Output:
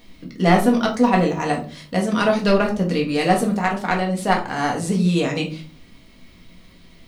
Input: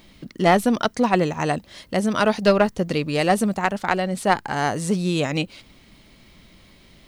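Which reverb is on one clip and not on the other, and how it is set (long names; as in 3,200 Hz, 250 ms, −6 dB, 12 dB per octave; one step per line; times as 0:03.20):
rectangular room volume 230 cubic metres, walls furnished, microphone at 1.8 metres
level −2.5 dB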